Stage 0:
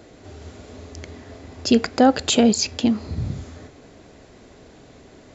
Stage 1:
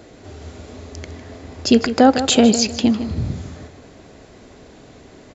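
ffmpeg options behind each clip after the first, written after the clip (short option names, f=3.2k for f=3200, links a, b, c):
-filter_complex "[0:a]asplit=2[a][b];[b]adelay=154,lowpass=f=3.9k:p=1,volume=-11dB,asplit=2[c][d];[d]adelay=154,lowpass=f=3.9k:p=1,volume=0.33,asplit=2[e][f];[f]adelay=154,lowpass=f=3.9k:p=1,volume=0.33,asplit=2[g][h];[h]adelay=154,lowpass=f=3.9k:p=1,volume=0.33[i];[a][c][e][g][i]amix=inputs=5:normalize=0,volume=3dB"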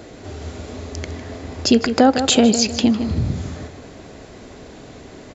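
-af "acompressor=threshold=-24dB:ratio=1.5,volume=4.5dB"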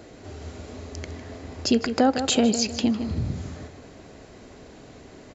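-af "bandreject=f=3.5k:w=24,volume=-6.5dB"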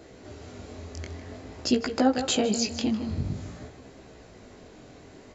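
-af "flanger=delay=15:depth=7.9:speed=0.51"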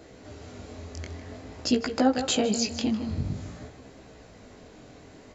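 -af "bandreject=f=370:w=12"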